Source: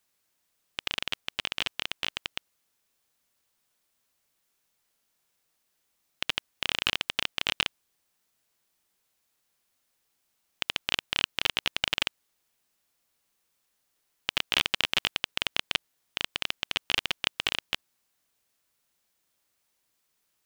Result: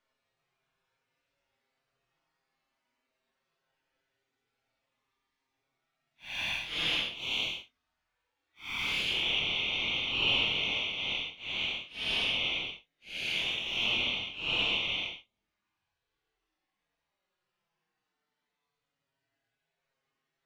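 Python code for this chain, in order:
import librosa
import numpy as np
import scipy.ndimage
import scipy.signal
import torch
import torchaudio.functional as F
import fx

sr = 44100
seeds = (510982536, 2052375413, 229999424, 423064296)

p1 = fx.spec_quant(x, sr, step_db=15)
p2 = scipy.signal.sosfilt(scipy.signal.butter(2, 2800.0, 'lowpass', fs=sr, output='sos'), p1)
p3 = fx.rider(p2, sr, range_db=10, speed_s=2.0)
p4 = p2 + (p3 * librosa.db_to_amplitude(1.0))
p5 = fx.env_flanger(p4, sr, rest_ms=7.6, full_db=-26.0)
p6 = fx.paulstretch(p5, sr, seeds[0], factor=5.9, window_s=0.1, from_s=5.13)
p7 = fx.room_early_taps(p6, sr, ms=(25, 45), db=(-5.5, -11.0))
y = p7 * librosa.db_to_amplitude(-4.0)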